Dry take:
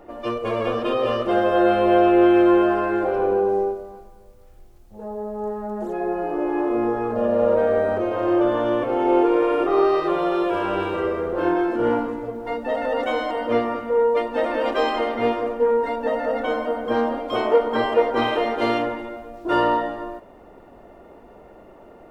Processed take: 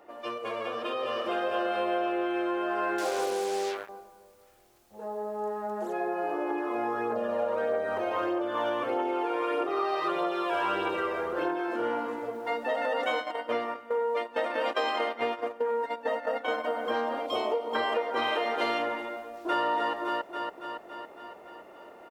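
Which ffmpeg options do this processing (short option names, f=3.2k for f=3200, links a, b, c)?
-filter_complex "[0:a]asplit=2[a][b];[b]afade=t=in:st=0.7:d=0.01,afade=t=out:st=1.3:d=0.01,aecho=0:1:460|920|1380|1840:0.562341|0.196819|0.0688868|0.0241104[c];[a][c]amix=inputs=2:normalize=0,asettb=1/sr,asplit=3[d][e][f];[d]atrim=end=2.984[g];[e]atrim=start=2.98:end=3.89,asetpts=PTS-STARTPTS,afade=t=in:d=0.004:c=qsin,afade=t=out:st=0.906:d=0.004:c=qsin,acrusher=bits=4:mix=0:aa=0.5[h];[f]atrim=start=3.886[i];[g][h]acrossfade=d=0.004:c1=hsin:c2=qsin[j];[j][i]acrossfade=d=0.004:c1=qsin:c2=hsin,asettb=1/sr,asplit=3[k][l][m];[k]atrim=end=6.504[n];[l]atrim=start=6.5:end=11.6,asetpts=PTS-STARTPTS,afade=t=in:d=0.004:c=qsin,afade=t=out:st=5.096:d=0.004:c=qsin,aphaser=in_gain=1:out_gain=1:delay=1.4:decay=0.4:speed=1.6:type=triangular[o];[m]atrim=start=11.596[p];[n][o]acrossfade=d=0.004:c1=hsin:c2=qsin[q];[q][p]acrossfade=d=0.004:c1=qsin:c2=hsin,asplit=3[r][s][t];[r]afade=t=out:st=13.08:d=0.02[u];[s]agate=range=-13dB:threshold=-25dB:ratio=16:release=100:detection=peak,afade=t=in:st=13.08:d=0.02,afade=t=out:st=16.63:d=0.02[v];[t]afade=t=in:st=16.63:d=0.02[w];[u][v][w]amix=inputs=3:normalize=0,asettb=1/sr,asplit=3[x][y][z];[x]atrim=end=17.264[aa];[y]atrim=start=17.26:end=17.75,asetpts=PTS-STARTPTS,afade=t=in:d=0.004:c=qsin,afade=t=out:st=0.486:d=0.004:c=qsin,equalizer=f=1.6k:t=o:w=0.73:g=-15[ab];[z]atrim=start=17.746[ac];[aa][ab]acrossfade=d=0.004:c1=hsin:c2=qsin[ad];[ad][ac]acrossfade=d=0.004:c1=qsin:c2=hsin,asplit=2[ae][af];[af]afade=t=in:st=19.24:d=0.01,afade=t=out:st=19.65:d=0.01,aecho=0:1:280|560|840|1120|1400|1680|1960|2240|2520|2800:0.530884|0.345075|0.224299|0.145794|0.0947662|0.061598|0.0400387|0.0260252|0.0169164|0.0109956[ag];[ae][ag]amix=inputs=2:normalize=0,acompressor=threshold=-22dB:ratio=6,highpass=f=880:p=1,dynaudnorm=f=350:g=7:m=5dB,volume=-3dB"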